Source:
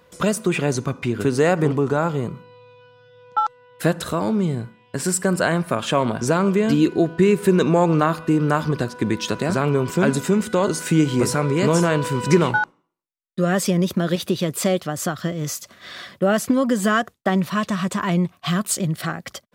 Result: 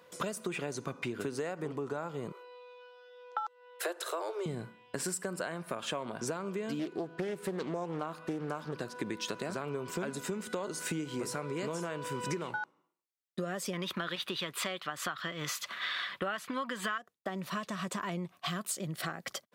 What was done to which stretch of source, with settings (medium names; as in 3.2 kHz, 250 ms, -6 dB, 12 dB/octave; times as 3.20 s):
2.32–4.46 s: steep high-pass 340 Hz 96 dB/octave
6.79–8.81 s: loudspeaker Doppler distortion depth 0.39 ms
11.83–12.36 s: band-stop 4.2 kHz
13.73–16.98 s: high-order bell 1.9 kHz +13 dB 2.5 oct
whole clip: high-pass 180 Hz 12 dB/octave; peaking EQ 230 Hz -3.5 dB 0.95 oct; compression 12:1, threshold -29 dBFS; trim -3.5 dB